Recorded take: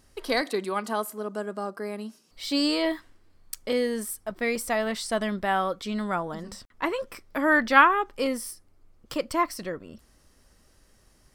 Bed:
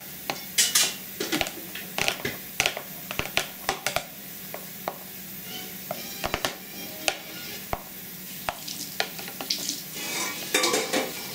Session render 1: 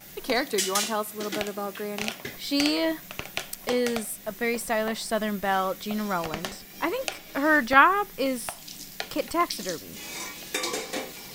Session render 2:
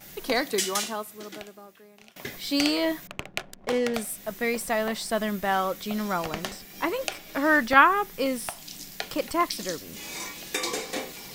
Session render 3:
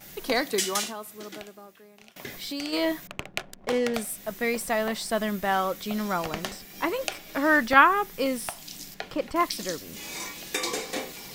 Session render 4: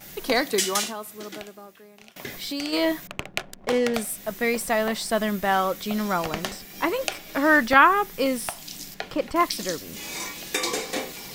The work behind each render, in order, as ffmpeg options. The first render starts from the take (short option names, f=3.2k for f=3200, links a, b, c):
-filter_complex "[1:a]volume=-6.5dB[a];[0:a][a]amix=inputs=2:normalize=0"
-filter_complex "[0:a]asettb=1/sr,asplit=3[a][b][c];[a]atrim=end=3.074[d];[b]atrim=start=3.07:end=3.94,asetpts=PTS-STARTPTS,afade=t=in:d=0.004:c=qsin,afade=t=out:st=0.866:d=0.004:c=qsin,adynamicsmooth=sensitivity=5:basefreq=500[e];[c]atrim=start=3.936[f];[d][e]acrossfade=d=0.004:c1=hsin:c2=qsin[g];[g][f]acrossfade=d=0.004:c1=qsin:c2=hsin,asplit=2[h][i];[h]atrim=end=2.16,asetpts=PTS-STARTPTS,afade=t=out:st=0.56:d=1.6:c=qua:silence=0.0707946[j];[i]atrim=start=2.16,asetpts=PTS-STARTPTS,afade=t=in:d=0.004:c=hsin:silence=0.0707946[k];[j][k]concat=n=2:v=0:a=1"
-filter_complex "[0:a]asplit=3[a][b][c];[a]afade=t=out:st=0.88:d=0.02[d];[b]acompressor=threshold=-32dB:ratio=3:attack=3.2:release=140:knee=1:detection=peak,afade=t=in:st=0.88:d=0.02,afade=t=out:st=2.72:d=0.02[e];[c]afade=t=in:st=2.72:d=0.02[f];[d][e][f]amix=inputs=3:normalize=0,asettb=1/sr,asplit=3[g][h][i];[g]atrim=end=8.944[j];[h]atrim=start=8.94:end=9.36,asetpts=PTS-STARTPTS,afade=t=in:d=0.004:c=qsin,afade=t=out:st=0.416:d=0.004:c=qsin,lowpass=f=2.1k:p=1[k];[i]atrim=start=9.356[l];[j][k]acrossfade=d=0.004:c1=hsin:c2=qsin[m];[m][l]acrossfade=d=0.004:c1=qsin:c2=hsin"
-af "volume=3dB,alimiter=limit=-3dB:level=0:latency=1"